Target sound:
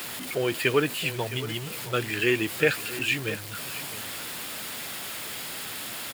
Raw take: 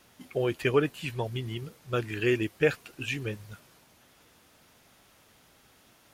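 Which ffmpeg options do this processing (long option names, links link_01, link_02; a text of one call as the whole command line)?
ffmpeg -i in.wav -filter_complex "[0:a]aeval=exprs='val(0)+0.5*0.0168*sgn(val(0))':channel_layout=same,equalizer=frequency=6000:width=7.8:gain=-13,acrossover=split=1500[link_01][link_02];[link_02]acontrast=63[link_03];[link_01][link_03]amix=inputs=2:normalize=0,highpass=120,asplit=2[link_04][link_05];[link_05]aecho=0:1:664:0.188[link_06];[link_04][link_06]amix=inputs=2:normalize=0,acrusher=bits=6:mix=0:aa=0.000001" out.wav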